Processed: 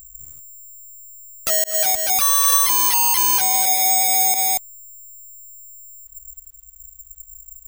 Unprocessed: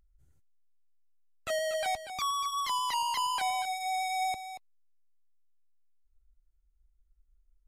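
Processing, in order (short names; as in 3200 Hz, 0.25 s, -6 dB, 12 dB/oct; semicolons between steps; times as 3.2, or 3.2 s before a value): careless resampling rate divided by 6×, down none, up zero stuff; 1.64–2.08 fade in linear; 3.56–4.49 HPF 220 Hz 24 dB/oct; maximiser +16.5 dB; gain -1 dB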